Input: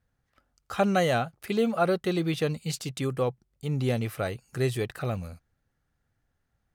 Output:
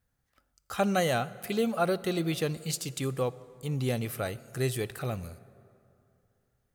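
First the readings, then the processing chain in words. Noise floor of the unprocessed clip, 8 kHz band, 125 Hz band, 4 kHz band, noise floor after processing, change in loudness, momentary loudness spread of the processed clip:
-77 dBFS, +3.5 dB, -3.0 dB, -0.5 dB, -77 dBFS, -2.5 dB, 8 LU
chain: high shelf 6500 Hz +10.5 dB; plate-style reverb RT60 2.7 s, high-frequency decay 0.55×, DRR 17 dB; gain -3 dB

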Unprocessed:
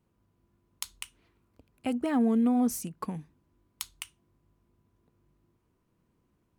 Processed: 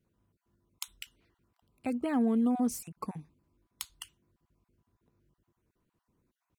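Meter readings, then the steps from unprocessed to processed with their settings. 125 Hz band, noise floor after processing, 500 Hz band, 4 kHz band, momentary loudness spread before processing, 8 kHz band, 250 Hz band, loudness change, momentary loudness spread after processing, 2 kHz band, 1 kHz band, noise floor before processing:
-4.0 dB, under -85 dBFS, -2.5 dB, -3.0 dB, 20 LU, -3.5 dB, -3.0 dB, -2.5 dB, 22 LU, -3.0 dB, -2.5 dB, -74 dBFS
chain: random spectral dropouts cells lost 25%; gain -2.5 dB

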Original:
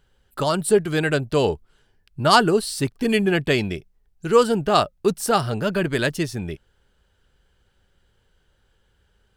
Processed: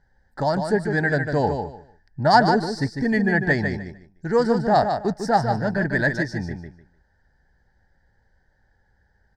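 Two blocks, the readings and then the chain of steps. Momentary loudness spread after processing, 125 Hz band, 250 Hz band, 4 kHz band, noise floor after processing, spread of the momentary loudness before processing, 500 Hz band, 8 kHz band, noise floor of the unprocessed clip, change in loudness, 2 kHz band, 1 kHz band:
13 LU, +1.0 dB, +0.5 dB, -7.5 dB, -65 dBFS, 15 LU, -2.5 dB, -13.5 dB, -65 dBFS, -1.0 dB, +2.5 dB, +1.5 dB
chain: EQ curve 270 Hz 0 dB, 400 Hz -7 dB, 850 Hz +6 dB, 1200 Hz -14 dB, 1800 Hz +9 dB, 2700 Hz -27 dB, 5000 Hz -1 dB, 11000 Hz -26 dB; on a send: feedback echo 0.15 s, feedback 21%, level -6.5 dB

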